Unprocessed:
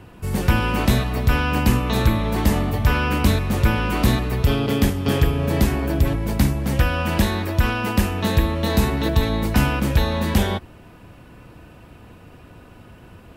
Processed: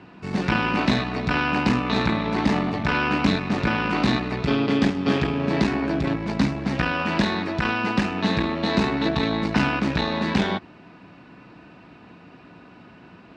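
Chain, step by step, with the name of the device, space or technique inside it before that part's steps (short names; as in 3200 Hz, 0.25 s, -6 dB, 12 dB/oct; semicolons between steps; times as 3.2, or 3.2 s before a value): guitar amplifier (tube stage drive 11 dB, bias 0.7; tone controls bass -8 dB, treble +15 dB; speaker cabinet 84–3600 Hz, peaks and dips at 86 Hz -7 dB, 180 Hz +8 dB, 270 Hz +5 dB, 510 Hz -6 dB, 3200 Hz -8 dB); gain +4.5 dB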